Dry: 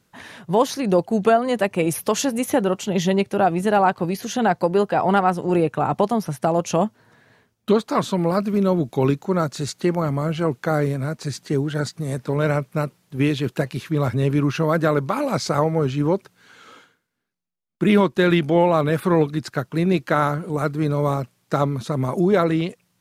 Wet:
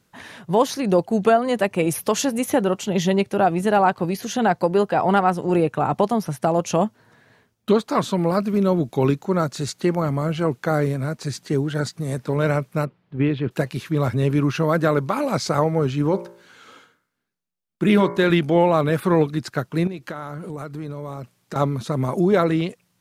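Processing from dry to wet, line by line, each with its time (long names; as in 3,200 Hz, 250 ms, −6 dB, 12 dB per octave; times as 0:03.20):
0:12.85–0:13.51: high-frequency loss of the air 380 metres
0:16.09–0:18.30: hum removal 58.39 Hz, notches 38
0:19.87–0:21.56: downward compressor, threshold −28 dBFS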